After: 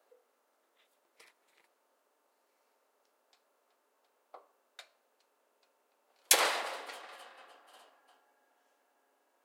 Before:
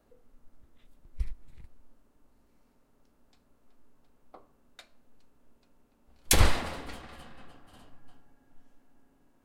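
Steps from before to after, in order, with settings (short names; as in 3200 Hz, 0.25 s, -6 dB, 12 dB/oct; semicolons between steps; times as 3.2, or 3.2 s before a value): HPF 460 Hz 24 dB/oct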